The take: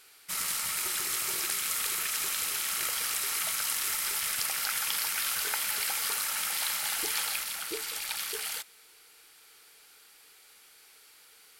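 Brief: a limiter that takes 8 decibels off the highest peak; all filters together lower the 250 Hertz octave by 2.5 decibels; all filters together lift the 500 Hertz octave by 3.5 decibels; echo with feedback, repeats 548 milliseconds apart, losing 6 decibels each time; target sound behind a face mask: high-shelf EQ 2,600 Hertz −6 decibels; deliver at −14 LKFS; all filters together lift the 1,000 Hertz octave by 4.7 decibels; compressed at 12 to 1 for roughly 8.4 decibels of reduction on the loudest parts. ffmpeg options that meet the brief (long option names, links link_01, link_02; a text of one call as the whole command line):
ffmpeg -i in.wav -af "equalizer=frequency=250:width_type=o:gain=-8.5,equalizer=frequency=500:width_type=o:gain=5.5,equalizer=frequency=1000:width_type=o:gain=7,acompressor=threshold=-33dB:ratio=12,alimiter=level_in=3dB:limit=-24dB:level=0:latency=1,volume=-3dB,highshelf=frequency=2600:gain=-6,aecho=1:1:548|1096|1644|2192|2740|3288:0.501|0.251|0.125|0.0626|0.0313|0.0157,volume=25.5dB" out.wav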